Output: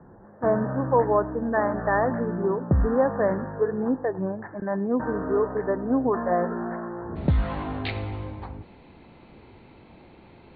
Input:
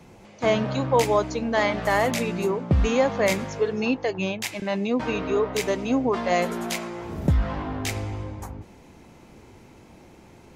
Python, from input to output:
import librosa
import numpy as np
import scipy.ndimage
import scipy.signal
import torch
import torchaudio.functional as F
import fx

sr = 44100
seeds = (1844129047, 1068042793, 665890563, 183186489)

y = fx.cheby1_lowpass(x, sr, hz=fx.steps((0.0, 1800.0), (7.15, 4400.0)), order=8)
y = y + 10.0 ** (-23.0 / 20.0) * np.pad(y, (int(103 * sr / 1000.0), 0))[:len(y)]